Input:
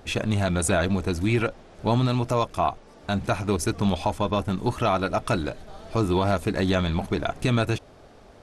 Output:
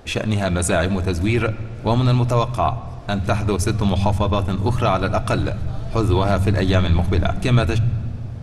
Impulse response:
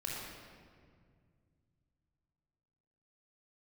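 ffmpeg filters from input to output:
-filter_complex "[0:a]asplit=2[a][b];[b]asubboost=boost=11.5:cutoff=120[c];[1:a]atrim=start_sample=2205,lowpass=8.1k[d];[c][d]afir=irnorm=-1:irlink=0,volume=-15dB[e];[a][e]amix=inputs=2:normalize=0,volume=3dB"

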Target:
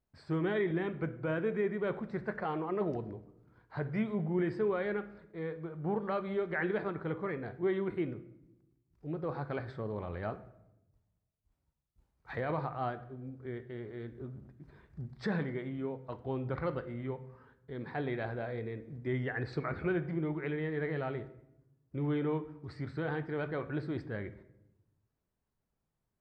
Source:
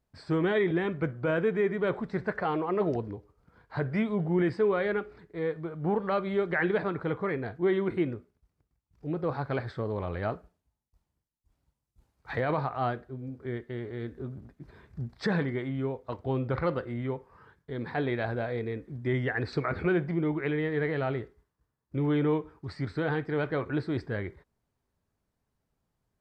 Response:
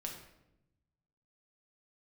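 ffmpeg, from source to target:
-filter_complex "[0:a]asplit=2[a][b];[1:a]atrim=start_sample=2205,lowpass=3.5k[c];[b][c]afir=irnorm=-1:irlink=0,volume=-5.5dB[d];[a][d]amix=inputs=2:normalize=0,volume=-8.5dB"

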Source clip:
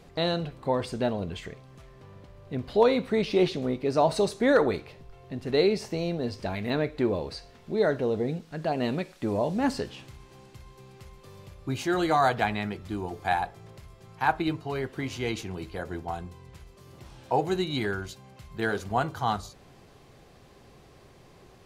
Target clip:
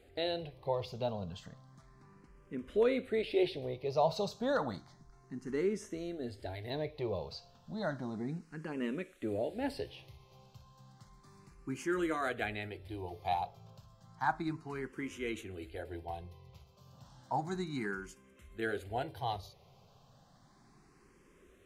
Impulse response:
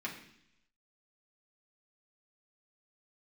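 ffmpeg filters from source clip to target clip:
-filter_complex "[0:a]asettb=1/sr,asplit=3[a][b][c];[a]atrim=end=4.794[d];[b]atrim=start=4.79:end=6.85,asetpts=PTS-STARTPTS,afade=t=in:d=0.004:c=qsin,afade=t=out:st=2.056:d=0.004:c=qsin,equalizer=f=500:t=o:w=0.33:g=-7,equalizer=f=2.5k:t=o:w=0.33:g=-11,equalizer=f=6.3k:t=o:w=0.33:g=7[e];[c]atrim=start=6.846[f];[d][e]acrossfade=d=0.004:c1=hsin:c2=qsin[g];[g][f]acrossfade=d=0.004:c1=qsin:c2=hsin,asplit=2[h][i];[i]afreqshift=0.32[j];[h][j]amix=inputs=2:normalize=1,volume=-6dB"

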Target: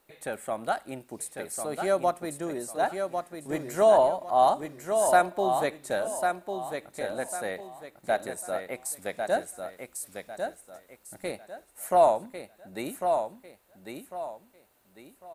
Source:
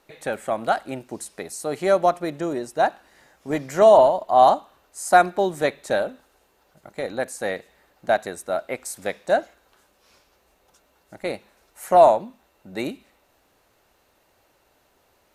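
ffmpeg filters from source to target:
-filter_complex "[0:a]aecho=1:1:1099|2198|3297|4396:0.501|0.155|0.0482|0.0149,aexciter=amount=3.2:drive=3.5:freq=8.2k,asettb=1/sr,asplit=3[a][b][c];[a]atrim=end=9.314[d];[b]atrim=start=9.31:end=11.31,asetpts=PTS-STARTPTS,afade=t=in:d=0.004:c=qsin,afade=t=out:st=1.996:d=0.004:c=qsin,bass=f=250:g=3,treble=f=4k:g=3[e];[c]atrim=start=11.306[f];[d][e]acrossfade=d=0.004:c1=hsin:c2=qsin[g];[g][f]acrossfade=d=0.004:c1=qsin:c2=hsin,volume=-7dB"

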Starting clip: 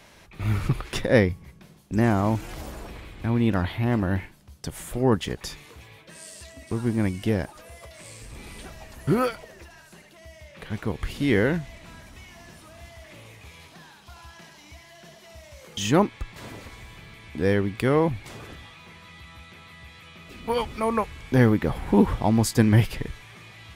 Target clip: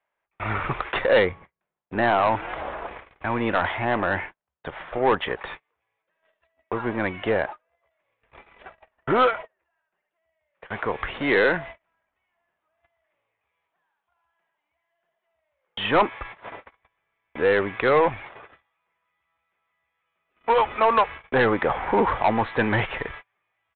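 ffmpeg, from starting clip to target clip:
-filter_complex "[0:a]aeval=exprs='if(lt(val(0),0),0.708*val(0),val(0))':c=same,agate=range=-37dB:threshold=-39dB:ratio=16:detection=peak,acontrast=84,acrossover=split=510 2200:gain=0.0891 1 0.126[a][b][c];[a][b][c]amix=inputs=3:normalize=0,aresample=8000,asoftclip=type=tanh:threshold=-19.5dB,aresample=44100,volume=7.5dB"

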